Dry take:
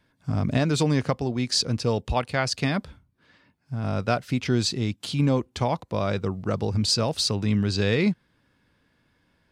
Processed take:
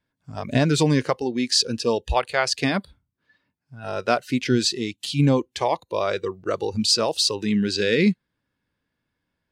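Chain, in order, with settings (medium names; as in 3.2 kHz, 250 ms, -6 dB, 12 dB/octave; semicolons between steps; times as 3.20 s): spectral noise reduction 16 dB; trim +4 dB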